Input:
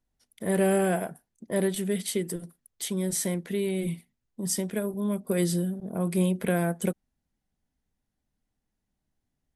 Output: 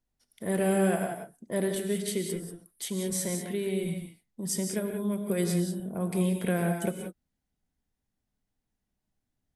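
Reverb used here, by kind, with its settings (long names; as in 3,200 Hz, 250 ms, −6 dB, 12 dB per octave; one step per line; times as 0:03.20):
reverb whose tail is shaped and stops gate 210 ms rising, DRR 4.5 dB
level −3 dB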